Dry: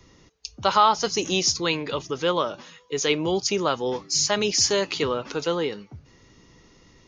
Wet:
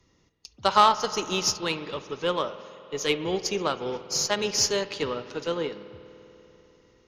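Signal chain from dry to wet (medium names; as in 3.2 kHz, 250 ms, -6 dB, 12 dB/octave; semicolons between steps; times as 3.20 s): Chebyshev shaper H 2 -15 dB, 3 -27 dB, 4 -24 dB, 8 -35 dB, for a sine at -6 dBFS; spring tank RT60 3.8 s, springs 49 ms, chirp 25 ms, DRR 8.5 dB; upward expansion 1.5:1, over -36 dBFS; trim +1 dB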